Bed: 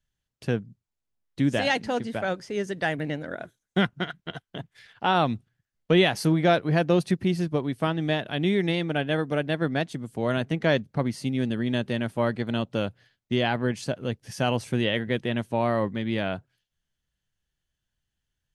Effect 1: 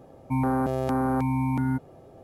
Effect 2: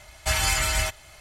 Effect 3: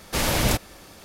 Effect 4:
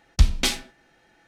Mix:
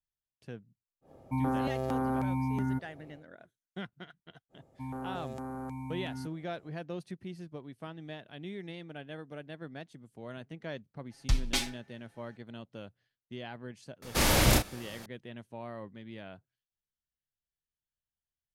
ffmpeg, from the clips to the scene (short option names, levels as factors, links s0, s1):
-filter_complex "[1:a]asplit=2[s0][s1];[0:a]volume=0.126[s2];[s1]equalizer=f=7300:t=o:w=0.59:g=8[s3];[4:a]aecho=1:1:7.3:0.77[s4];[3:a]asplit=2[s5][s6];[s6]adelay=33,volume=0.531[s7];[s5][s7]amix=inputs=2:normalize=0[s8];[s0]atrim=end=2.23,asetpts=PTS-STARTPTS,volume=0.501,afade=t=in:d=0.1,afade=t=out:st=2.13:d=0.1,adelay=1010[s9];[s3]atrim=end=2.23,asetpts=PTS-STARTPTS,volume=0.178,afade=t=in:d=0.05,afade=t=out:st=2.18:d=0.05,adelay=198009S[s10];[s4]atrim=end=1.27,asetpts=PTS-STARTPTS,volume=0.335,afade=t=in:d=0.004:c=hsin,afade=t=out:st=1.266:d=0.004:c=hsin,adelay=11100[s11];[s8]atrim=end=1.04,asetpts=PTS-STARTPTS,volume=0.708,afade=t=in:d=0.004:c=hsin,afade=t=out:st=1.036:d=0.004:c=hsin,adelay=14020[s12];[s2][s9][s10][s11][s12]amix=inputs=5:normalize=0"